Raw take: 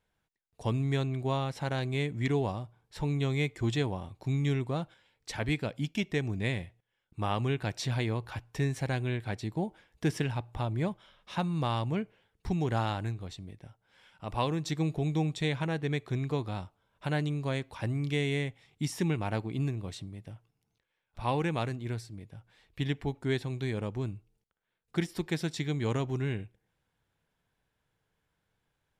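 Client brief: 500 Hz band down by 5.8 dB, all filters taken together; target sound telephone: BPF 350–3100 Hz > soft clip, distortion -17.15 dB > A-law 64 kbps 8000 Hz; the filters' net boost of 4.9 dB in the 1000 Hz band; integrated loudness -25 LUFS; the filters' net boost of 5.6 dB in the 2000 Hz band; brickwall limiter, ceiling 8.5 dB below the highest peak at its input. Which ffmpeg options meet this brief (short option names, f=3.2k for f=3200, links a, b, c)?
-af "equalizer=f=500:t=o:g=-8,equalizer=f=1k:t=o:g=7.5,equalizer=f=2k:t=o:g=6,alimiter=limit=-21.5dB:level=0:latency=1,highpass=350,lowpass=3.1k,asoftclip=threshold=-24.5dB,volume=14dB" -ar 8000 -c:a pcm_alaw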